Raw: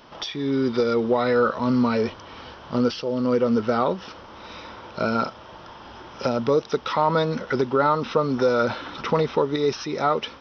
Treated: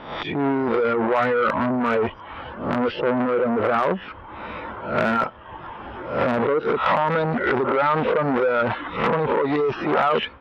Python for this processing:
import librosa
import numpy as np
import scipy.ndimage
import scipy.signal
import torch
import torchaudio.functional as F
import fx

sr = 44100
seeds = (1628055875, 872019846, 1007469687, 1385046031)

p1 = fx.spec_swells(x, sr, rise_s=0.52)
p2 = scipy.signal.sosfilt(scipy.signal.butter(4, 2500.0, 'lowpass', fs=sr, output='sos'), p1)
p3 = fx.over_compress(p2, sr, threshold_db=-23.0, ratio=-0.5)
p4 = p2 + F.gain(torch.from_numpy(p3), 1.0).numpy()
p5 = np.clip(p4, -10.0 ** (-6.0 / 20.0), 10.0 ** (-6.0 / 20.0))
p6 = fx.dereverb_blind(p5, sr, rt60_s=1.0)
y = fx.transformer_sat(p6, sr, knee_hz=1100.0)